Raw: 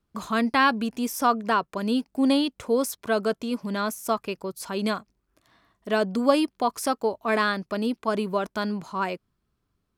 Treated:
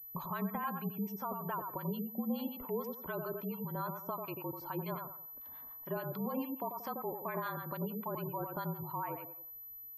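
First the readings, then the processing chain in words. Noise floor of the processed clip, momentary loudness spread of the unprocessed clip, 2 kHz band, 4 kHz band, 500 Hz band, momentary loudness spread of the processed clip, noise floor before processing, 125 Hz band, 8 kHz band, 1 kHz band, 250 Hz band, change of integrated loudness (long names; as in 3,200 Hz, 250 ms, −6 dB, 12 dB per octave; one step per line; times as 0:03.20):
−50 dBFS, 8 LU, −19.0 dB, −24.0 dB, −15.0 dB, 7 LU, −77 dBFS, −2.5 dB, below −25 dB, −13.0 dB, −14.0 dB, −14.0 dB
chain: parametric band 990 Hz +9 dB 0.45 octaves
noise that follows the level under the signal 17 dB
brickwall limiter −14 dBFS, peak gain reduction 10.5 dB
tape delay 89 ms, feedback 29%, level −4.5 dB, low-pass 2,500 Hz
downward compressor 2 to 1, threshold −43 dBFS, peak gain reduction 14 dB
high-shelf EQ 2,100 Hz −7 dB
two-band tremolo in antiphase 6.9 Hz, depth 70%, crossover 880 Hz
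frequency shifter −41 Hz
gate on every frequency bin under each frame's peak −30 dB strong
switching amplifier with a slow clock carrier 12,000 Hz
level +1.5 dB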